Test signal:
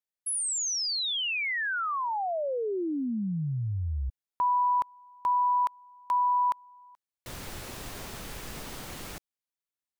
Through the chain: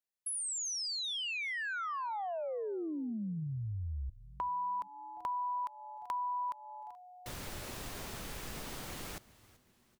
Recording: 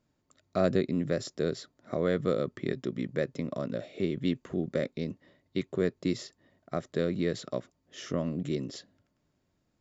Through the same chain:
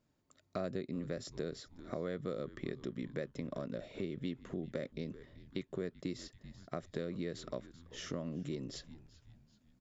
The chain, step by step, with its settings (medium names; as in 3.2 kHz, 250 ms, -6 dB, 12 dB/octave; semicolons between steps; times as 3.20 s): on a send: frequency-shifting echo 385 ms, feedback 45%, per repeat -130 Hz, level -20.5 dB; on the sum: compression 3:1, threshold -35 dBFS; trim -2.5 dB